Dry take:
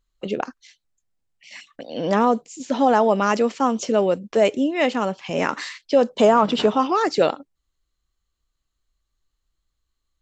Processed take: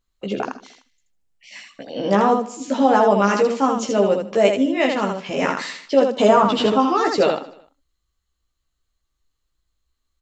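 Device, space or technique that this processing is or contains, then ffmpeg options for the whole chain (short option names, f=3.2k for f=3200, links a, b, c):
slapback doubling: -filter_complex "[0:a]aecho=1:1:151|302:0.1|0.031,asplit=3[a][b][c];[b]adelay=15,volume=-3dB[d];[c]adelay=80,volume=-4dB[e];[a][d][e]amix=inputs=3:normalize=0,volume=-1dB"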